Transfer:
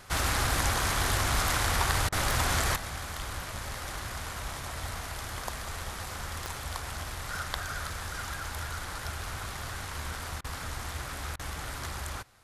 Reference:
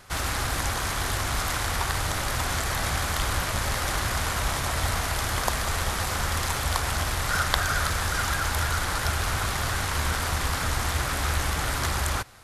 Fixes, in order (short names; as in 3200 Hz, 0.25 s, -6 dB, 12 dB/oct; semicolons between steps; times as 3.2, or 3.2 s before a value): de-click; interpolate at 2.09/10.41/11.36, 32 ms; gain correction +10.5 dB, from 2.76